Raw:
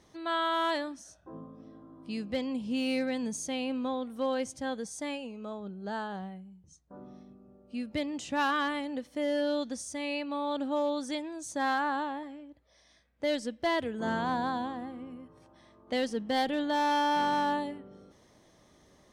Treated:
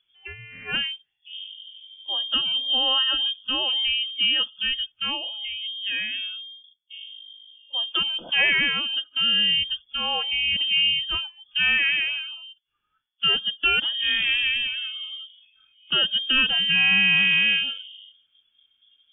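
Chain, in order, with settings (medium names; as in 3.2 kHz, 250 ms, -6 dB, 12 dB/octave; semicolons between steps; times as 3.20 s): spectral noise reduction 23 dB; frequency inversion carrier 3.4 kHz; trim +8.5 dB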